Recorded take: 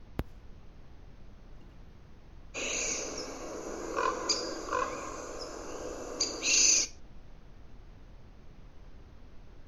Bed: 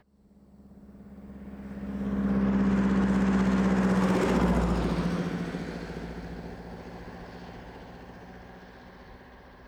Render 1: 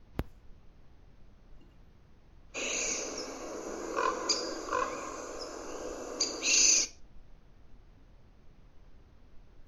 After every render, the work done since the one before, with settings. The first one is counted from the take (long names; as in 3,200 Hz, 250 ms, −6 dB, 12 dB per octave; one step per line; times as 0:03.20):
noise reduction from a noise print 6 dB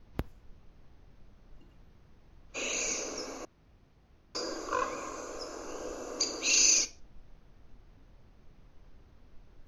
0:03.45–0:04.35: fill with room tone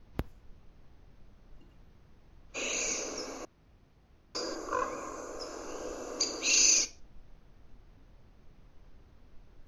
0:04.55–0:05.40: parametric band 3,500 Hz −8.5 dB 1.2 octaves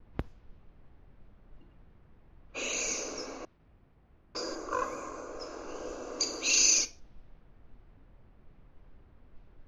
noise gate with hold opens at −56 dBFS
low-pass that shuts in the quiet parts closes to 2,100 Hz, open at −30.5 dBFS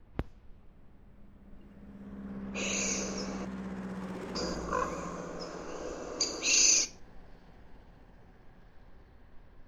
mix in bed −15.5 dB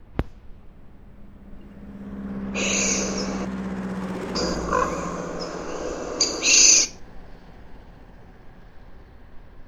level +10 dB